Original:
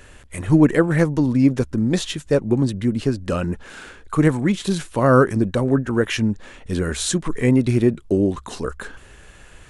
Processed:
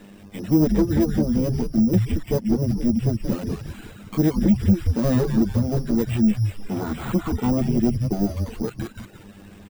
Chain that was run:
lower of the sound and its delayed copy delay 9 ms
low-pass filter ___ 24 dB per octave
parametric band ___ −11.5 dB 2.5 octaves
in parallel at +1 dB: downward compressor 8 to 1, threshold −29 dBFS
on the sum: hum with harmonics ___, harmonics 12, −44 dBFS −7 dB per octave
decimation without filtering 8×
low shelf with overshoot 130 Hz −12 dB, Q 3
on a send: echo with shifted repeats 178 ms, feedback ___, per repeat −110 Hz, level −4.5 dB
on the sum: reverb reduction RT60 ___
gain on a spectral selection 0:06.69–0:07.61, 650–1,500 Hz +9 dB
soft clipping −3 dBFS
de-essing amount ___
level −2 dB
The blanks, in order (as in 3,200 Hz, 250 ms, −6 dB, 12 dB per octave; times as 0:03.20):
3,100 Hz, 1,200 Hz, 100 Hz, 41%, 0.53 s, 75%